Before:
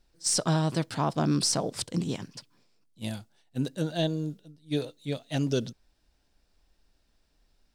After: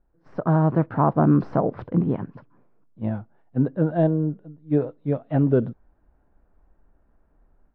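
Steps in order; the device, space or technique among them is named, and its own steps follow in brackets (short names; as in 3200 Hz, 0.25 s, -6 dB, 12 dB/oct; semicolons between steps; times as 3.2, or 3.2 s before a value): action camera in a waterproof case (LPF 1400 Hz 24 dB/oct; AGC gain up to 8.5 dB; AAC 48 kbps 22050 Hz)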